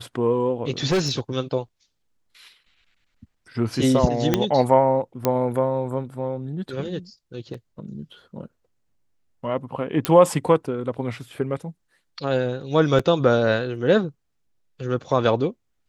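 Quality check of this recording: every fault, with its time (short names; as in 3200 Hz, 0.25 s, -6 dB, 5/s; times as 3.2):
0.91–1.2 clipped -16.5 dBFS
4.34 pop -4 dBFS
5.25 pop -6 dBFS
7.54 gap 4 ms
10.05 pop -5 dBFS
12.99 gap 4.8 ms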